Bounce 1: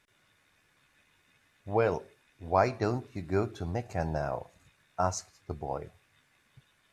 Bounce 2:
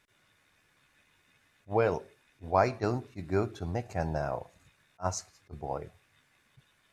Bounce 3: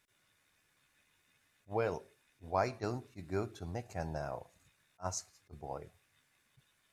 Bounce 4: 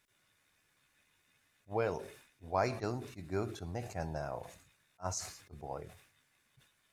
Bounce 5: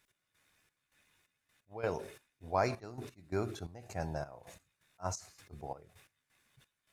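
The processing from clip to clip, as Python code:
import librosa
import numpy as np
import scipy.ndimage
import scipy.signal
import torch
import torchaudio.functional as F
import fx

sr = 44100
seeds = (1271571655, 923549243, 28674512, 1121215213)

y1 = fx.attack_slew(x, sr, db_per_s=420.0)
y2 = fx.high_shelf(y1, sr, hz=5300.0, db=8.5)
y2 = y2 * 10.0 ** (-7.5 / 20.0)
y3 = fx.sustainer(y2, sr, db_per_s=88.0)
y4 = fx.step_gate(y3, sr, bpm=131, pattern='x..xxx..xxx..', floor_db=-12.0, edge_ms=4.5)
y4 = y4 * 10.0 ** (1.0 / 20.0)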